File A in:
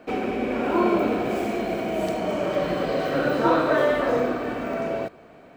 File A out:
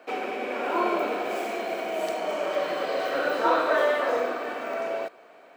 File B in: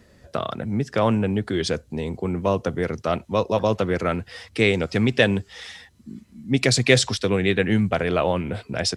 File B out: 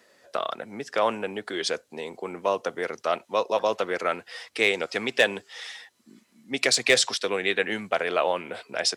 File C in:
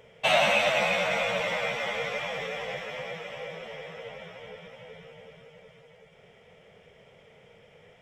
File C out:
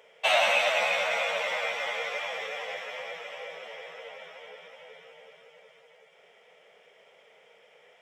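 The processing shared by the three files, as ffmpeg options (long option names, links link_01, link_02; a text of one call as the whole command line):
ffmpeg -i in.wav -af "highpass=520,asoftclip=type=hard:threshold=-9.5dB" out.wav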